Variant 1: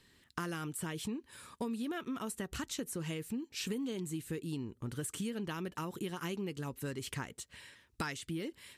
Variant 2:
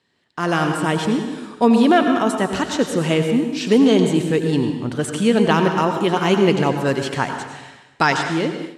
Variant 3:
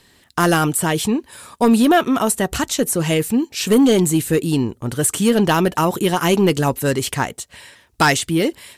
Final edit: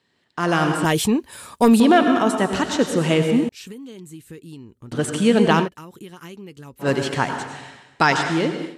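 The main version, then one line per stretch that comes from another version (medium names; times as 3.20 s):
2
0.85–1.80 s: from 3
3.49–4.92 s: from 1
5.64–6.84 s: from 1, crossfade 0.10 s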